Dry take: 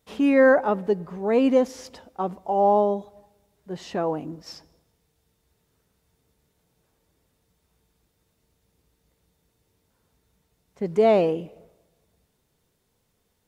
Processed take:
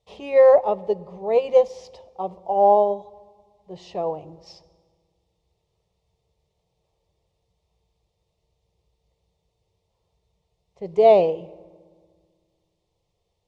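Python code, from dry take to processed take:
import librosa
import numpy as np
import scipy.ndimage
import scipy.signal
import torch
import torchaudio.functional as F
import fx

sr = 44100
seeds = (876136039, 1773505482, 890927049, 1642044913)

y = scipy.signal.sosfilt(scipy.signal.butter(2, 4600.0, 'lowpass', fs=sr, output='sos'), x)
y = fx.fixed_phaser(y, sr, hz=630.0, stages=4)
y = fx.rev_fdn(y, sr, rt60_s=1.9, lf_ratio=1.3, hf_ratio=0.65, size_ms=17.0, drr_db=18.0)
y = fx.upward_expand(y, sr, threshold_db=-28.0, expansion=1.5)
y = y * librosa.db_to_amplitude(6.0)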